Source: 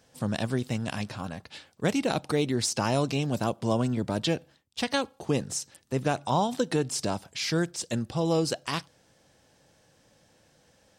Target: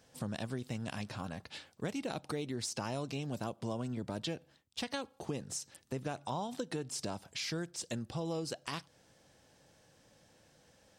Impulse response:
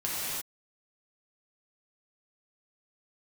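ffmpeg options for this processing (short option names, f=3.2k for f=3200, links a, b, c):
-af "acompressor=threshold=-35dB:ratio=3,volume=-2.5dB"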